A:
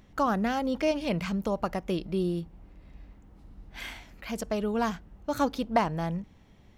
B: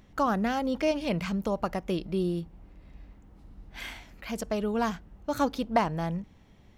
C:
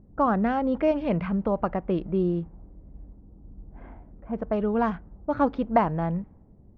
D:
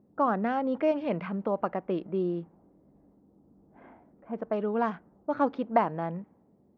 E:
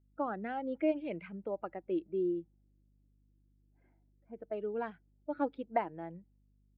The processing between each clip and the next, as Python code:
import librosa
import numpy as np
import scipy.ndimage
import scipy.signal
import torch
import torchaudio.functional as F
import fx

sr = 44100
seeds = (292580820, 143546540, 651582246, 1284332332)

y1 = x
y2 = scipy.signal.sosfilt(scipy.signal.butter(2, 1600.0, 'lowpass', fs=sr, output='sos'), y1)
y2 = fx.env_lowpass(y2, sr, base_hz=410.0, full_db=-22.5)
y2 = F.gain(torch.from_numpy(y2), 4.0).numpy()
y3 = scipy.signal.sosfilt(scipy.signal.butter(2, 230.0, 'highpass', fs=sr, output='sos'), y2)
y3 = F.gain(torch.from_numpy(y3), -2.5).numpy()
y4 = fx.bin_expand(y3, sr, power=1.5)
y4 = fx.cabinet(y4, sr, low_hz=210.0, low_slope=12, high_hz=4000.0, hz=(230.0, 330.0, 1100.0, 2200.0), db=(-4, 8, -8, 4))
y4 = fx.add_hum(y4, sr, base_hz=50, snr_db=31)
y4 = F.gain(torch.from_numpy(y4), -5.5).numpy()